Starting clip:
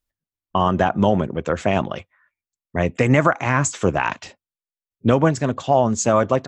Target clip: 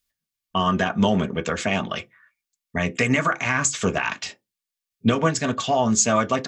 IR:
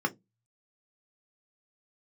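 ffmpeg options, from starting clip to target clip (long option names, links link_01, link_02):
-filter_complex "[0:a]tiltshelf=frequency=770:gain=-7.5,alimiter=limit=-9.5dB:level=0:latency=1:release=208,asplit=2[link_01][link_02];[1:a]atrim=start_sample=2205,afade=type=out:start_time=0.29:duration=0.01,atrim=end_sample=13230[link_03];[link_02][link_03]afir=irnorm=-1:irlink=0,volume=-12dB[link_04];[link_01][link_04]amix=inputs=2:normalize=0,volume=2.5dB"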